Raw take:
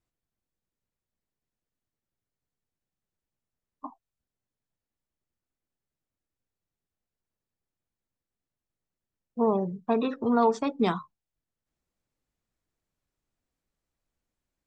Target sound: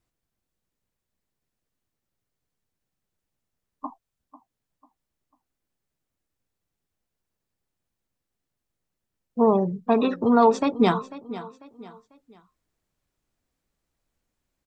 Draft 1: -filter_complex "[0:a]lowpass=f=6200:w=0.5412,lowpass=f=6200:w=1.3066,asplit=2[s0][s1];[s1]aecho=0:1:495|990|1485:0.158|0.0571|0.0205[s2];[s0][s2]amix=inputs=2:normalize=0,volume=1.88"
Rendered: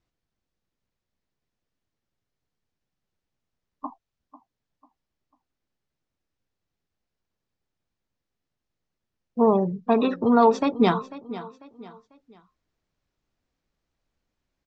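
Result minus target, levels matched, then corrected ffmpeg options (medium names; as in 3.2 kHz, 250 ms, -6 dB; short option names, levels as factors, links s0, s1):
8 kHz band -3.5 dB
-filter_complex "[0:a]asplit=2[s0][s1];[s1]aecho=0:1:495|990|1485:0.158|0.0571|0.0205[s2];[s0][s2]amix=inputs=2:normalize=0,volume=1.88"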